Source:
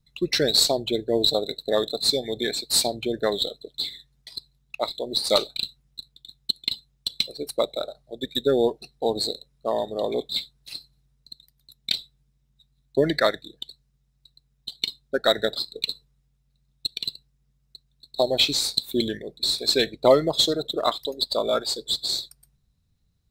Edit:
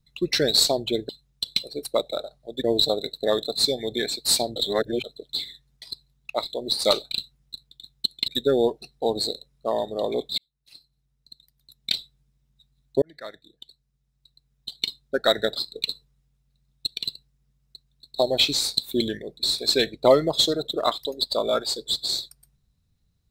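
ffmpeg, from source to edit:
-filter_complex "[0:a]asplit=8[s0][s1][s2][s3][s4][s5][s6][s7];[s0]atrim=end=1.092[s8];[s1]atrim=start=6.728:end=8.282[s9];[s2]atrim=start=1.088:end=3.012[s10];[s3]atrim=start=3.008:end=3.492,asetpts=PTS-STARTPTS,areverse[s11];[s4]atrim=start=3.488:end=6.732[s12];[s5]atrim=start=8.278:end=10.38,asetpts=PTS-STARTPTS,afade=t=out:st=2.098:d=0.004:c=hsin[s13];[s6]atrim=start=10.38:end=13.02,asetpts=PTS-STARTPTS,afade=t=in:d=1.54,afade=t=out:st=2.636:d=0.004:c=hsin[s14];[s7]atrim=start=13.02,asetpts=PTS-STARTPTS,afade=t=in:d=1.73[s15];[s8][s9]acrossfade=d=0.004:c1=hsin:c2=hsin[s16];[s16][s10]acrossfade=d=0.004:c1=hsin:c2=hsin[s17];[s17][s11]acrossfade=d=0.004:c1=hsin:c2=hsin[s18];[s18][s12]acrossfade=d=0.004:c1=hsin:c2=hsin[s19];[s13][s14][s15]concat=n=3:v=0:a=1[s20];[s19][s20]acrossfade=d=0.004:c1=hsin:c2=hsin"

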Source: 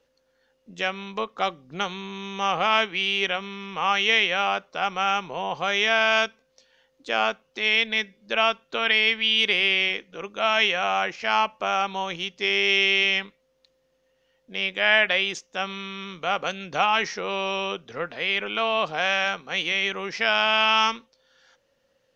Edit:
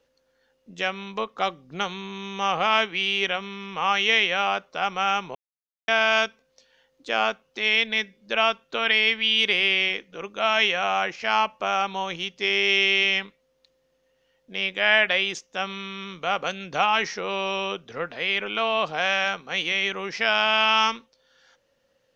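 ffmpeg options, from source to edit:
-filter_complex "[0:a]asplit=3[s0][s1][s2];[s0]atrim=end=5.35,asetpts=PTS-STARTPTS,afade=t=out:st=5.346:d=0.004:c=hsin[s3];[s1]atrim=start=5.35:end=5.88,asetpts=PTS-STARTPTS,volume=0[s4];[s2]atrim=start=5.88,asetpts=PTS-STARTPTS,afade=t=in:d=0.004:c=hsin[s5];[s3][s4][s5]concat=n=3:v=0:a=1"

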